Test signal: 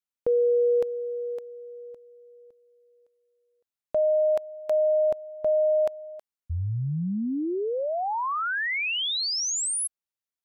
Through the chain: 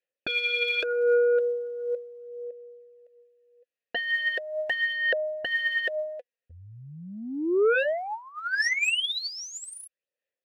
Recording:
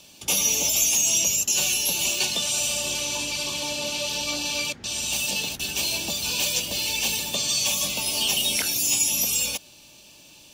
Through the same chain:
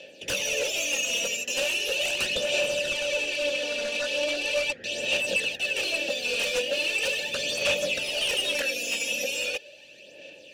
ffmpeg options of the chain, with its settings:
-filter_complex "[0:a]asplit=3[s0][s1][s2];[s0]bandpass=f=530:t=q:w=8,volume=1[s3];[s1]bandpass=f=1840:t=q:w=8,volume=0.501[s4];[s2]bandpass=f=2480:t=q:w=8,volume=0.355[s5];[s3][s4][s5]amix=inputs=3:normalize=0,aeval=exprs='0.0841*sin(PI/2*5.01*val(0)/0.0841)':c=same,aphaser=in_gain=1:out_gain=1:delay=4.3:decay=0.5:speed=0.39:type=sinusoidal,volume=0.75"

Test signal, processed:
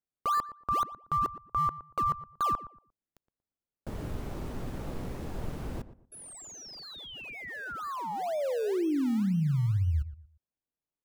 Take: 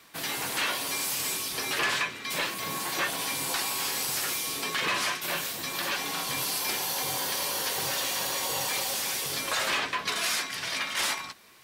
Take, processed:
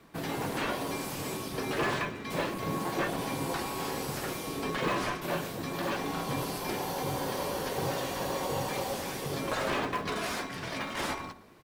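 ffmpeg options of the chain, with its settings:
-filter_complex "[0:a]tiltshelf=f=1300:g=9.5,asplit=2[s0][s1];[s1]acrusher=samples=29:mix=1:aa=0.000001:lfo=1:lforange=29:lforate=2,volume=0.282[s2];[s0][s2]amix=inputs=2:normalize=0,asoftclip=type=hard:threshold=0.106,asplit=2[s3][s4];[s4]adelay=117,lowpass=f=1300:p=1,volume=0.211,asplit=2[s5][s6];[s6]adelay=117,lowpass=f=1300:p=1,volume=0.28,asplit=2[s7][s8];[s8]adelay=117,lowpass=f=1300:p=1,volume=0.28[s9];[s3][s5][s7][s9]amix=inputs=4:normalize=0,volume=0.708"

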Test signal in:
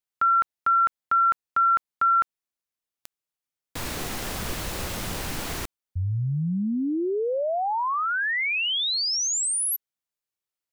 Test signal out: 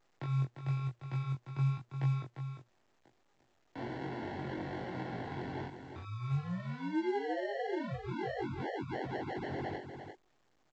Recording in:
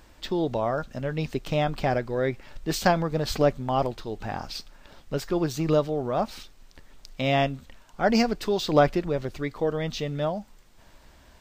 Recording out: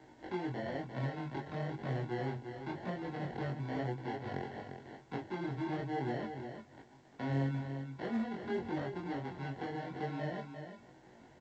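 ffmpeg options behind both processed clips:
-filter_complex "[0:a]equalizer=f=230:t=o:w=2.3:g=12,acrusher=samples=36:mix=1:aa=0.000001,acrossover=split=160|460[s0][s1][s2];[s0]acompressor=threshold=0.0794:ratio=4[s3];[s1]acompressor=threshold=0.0355:ratio=2[s4];[s2]acompressor=threshold=0.0355:ratio=8[s5];[s3][s4][s5]amix=inputs=3:normalize=0,volume=7.5,asoftclip=hard,volume=0.133,acompressor=threshold=0.0158:ratio=1.5:attack=4:release=50:detection=rms,flanger=delay=15.5:depth=7.2:speed=1,highpass=110,equalizer=f=120:t=q:w=4:g=6,equalizer=f=190:t=q:w=4:g=-7,equalizer=f=360:t=q:w=4:g=5,equalizer=f=790:t=q:w=4:g=8,equalizer=f=1900:t=q:w=4:g=6,equalizer=f=2800:t=q:w=4:g=-4,lowpass=f=4100:w=0.5412,lowpass=f=4100:w=1.3066,asplit=2[s6][s7];[s7]adelay=22,volume=0.794[s8];[s6][s8]amix=inputs=2:normalize=0,asplit=2[s9][s10];[s10]aecho=0:1:349:0.398[s11];[s9][s11]amix=inputs=2:normalize=0,volume=0.376" -ar 16000 -c:a pcm_alaw

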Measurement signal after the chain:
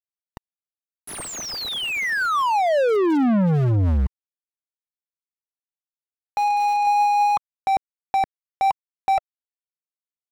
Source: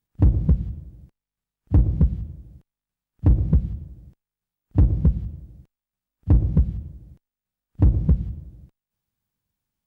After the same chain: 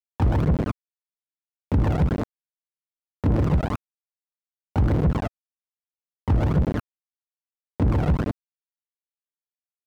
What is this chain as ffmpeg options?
-filter_complex "[0:a]aeval=exprs='val(0)*gte(abs(val(0)),0.0473)':c=same,aphaser=in_gain=1:out_gain=1:delay=1.6:decay=0.38:speed=1.8:type=triangular,asplit=2[s0][s1];[s1]highpass=f=720:p=1,volume=70.8,asoftclip=type=tanh:threshold=0.631[s2];[s0][s2]amix=inputs=2:normalize=0,lowpass=f=1000:p=1,volume=0.501,volume=0.422"

